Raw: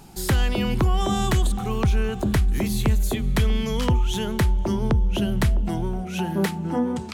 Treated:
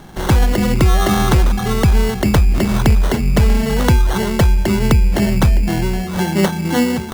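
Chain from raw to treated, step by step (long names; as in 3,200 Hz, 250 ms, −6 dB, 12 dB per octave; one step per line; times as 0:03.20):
decimation without filtering 18×
level +8 dB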